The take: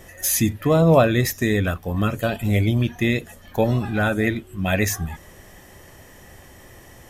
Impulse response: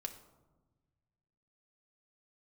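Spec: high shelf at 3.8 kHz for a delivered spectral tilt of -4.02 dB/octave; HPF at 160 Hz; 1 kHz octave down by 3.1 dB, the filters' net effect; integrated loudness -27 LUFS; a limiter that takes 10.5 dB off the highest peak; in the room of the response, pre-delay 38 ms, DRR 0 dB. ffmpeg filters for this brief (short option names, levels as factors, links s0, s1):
-filter_complex "[0:a]highpass=160,equalizer=f=1000:t=o:g=-5.5,highshelf=f=3800:g=8.5,alimiter=limit=0.237:level=0:latency=1,asplit=2[s0][s1];[1:a]atrim=start_sample=2205,adelay=38[s2];[s1][s2]afir=irnorm=-1:irlink=0,volume=1.26[s3];[s0][s3]amix=inputs=2:normalize=0,volume=0.501"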